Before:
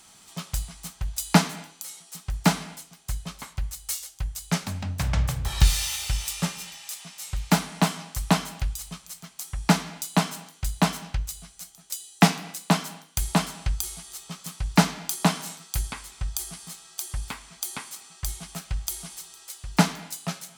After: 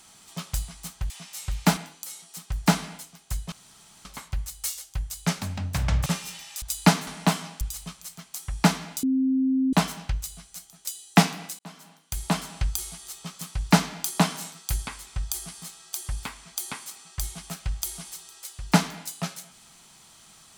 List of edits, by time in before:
1.10–1.55 s: swap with 6.95–7.62 s
3.30 s: insert room tone 0.53 s
5.31–6.39 s: delete
8.16–8.66 s: delete
10.08–10.78 s: bleep 263 Hz -19.5 dBFS
12.64–13.64 s: fade in

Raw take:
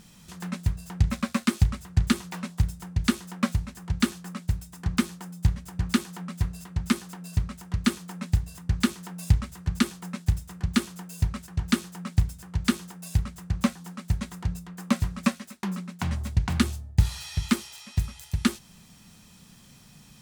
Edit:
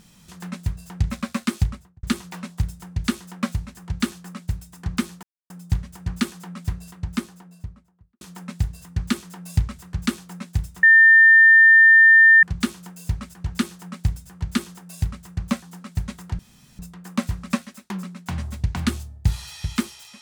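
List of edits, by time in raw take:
1.62–2.03 s: studio fade out
5.23 s: insert silence 0.27 s
6.52–7.94 s: studio fade out
10.56 s: add tone 1.8 kHz -8 dBFS 1.60 s
14.52 s: insert room tone 0.40 s

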